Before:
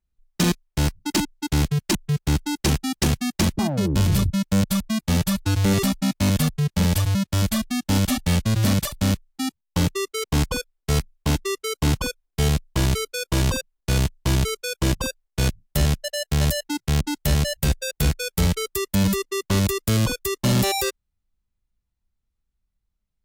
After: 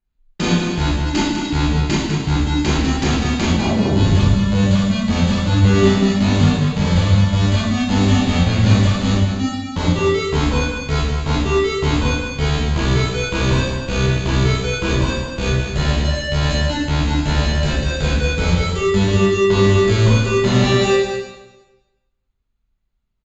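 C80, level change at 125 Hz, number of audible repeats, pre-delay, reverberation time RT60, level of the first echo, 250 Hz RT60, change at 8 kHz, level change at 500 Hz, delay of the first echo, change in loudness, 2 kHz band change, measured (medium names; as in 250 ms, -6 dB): 1.5 dB, +6.0 dB, 1, 7 ms, 1.1 s, -7.5 dB, 1.1 s, -2.0 dB, +9.5 dB, 200 ms, +6.0 dB, +7.5 dB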